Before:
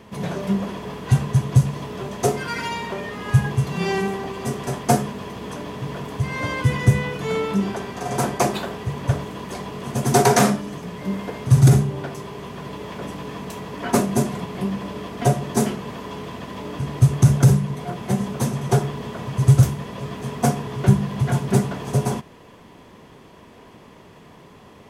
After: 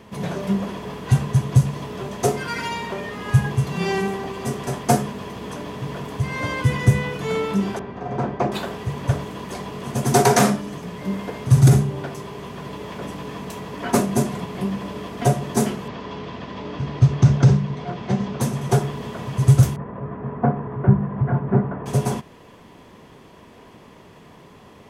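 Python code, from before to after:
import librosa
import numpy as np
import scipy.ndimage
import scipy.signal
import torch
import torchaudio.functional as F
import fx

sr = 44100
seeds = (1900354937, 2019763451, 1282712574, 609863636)

y = fx.spacing_loss(x, sr, db_at_10k=35, at=(7.79, 8.52))
y = fx.lowpass(y, sr, hz=5500.0, slope=24, at=(15.88, 18.41))
y = fx.lowpass(y, sr, hz=1600.0, slope=24, at=(19.76, 21.86))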